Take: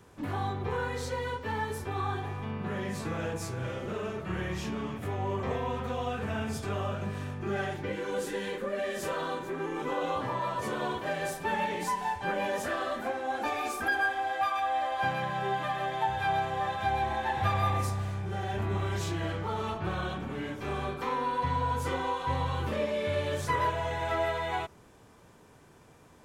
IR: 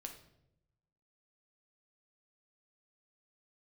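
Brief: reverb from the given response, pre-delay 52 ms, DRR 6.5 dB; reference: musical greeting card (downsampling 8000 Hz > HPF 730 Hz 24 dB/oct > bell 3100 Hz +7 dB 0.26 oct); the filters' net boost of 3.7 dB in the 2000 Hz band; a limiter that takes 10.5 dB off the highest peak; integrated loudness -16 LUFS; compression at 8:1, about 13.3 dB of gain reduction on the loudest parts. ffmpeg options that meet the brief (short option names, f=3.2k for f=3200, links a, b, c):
-filter_complex "[0:a]equalizer=f=2k:t=o:g=4.5,acompressor=threshold=-36dB:ratio=8,alimiter=level_in=12.5dB:limit=-24dB:level=0:latency=1,volume=-12.5dB,asplit=2[a][b];[1:a]atrim=start_sample=2205,adelay=52[c];[b][c]afir=irnorm=-1:irlink=0,volume=-2.5dB[d];[a][d]amix=inputs=2:normalize=0,aresample=8000,aresample=44100,highpass=f=730:w=0.5412,highpass=f=730:w=1.3066,equalizer=f=3.1k:t=o:w=0.26:g=7,volume=30dB"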